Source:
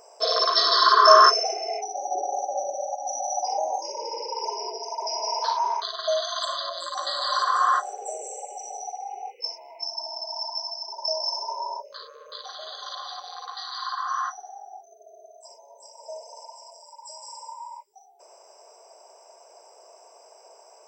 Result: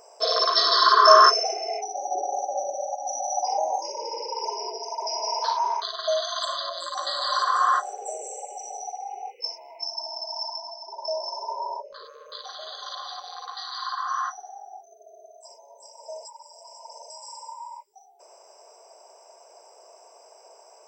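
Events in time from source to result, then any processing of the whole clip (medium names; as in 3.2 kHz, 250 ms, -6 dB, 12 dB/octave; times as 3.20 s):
3.33–3.89 s: peaking EQ 1.4 kHz +8.5 dB
10.56–12.05 s: tilt EQ -3 dB/octave
16.25–17.10 s: reverse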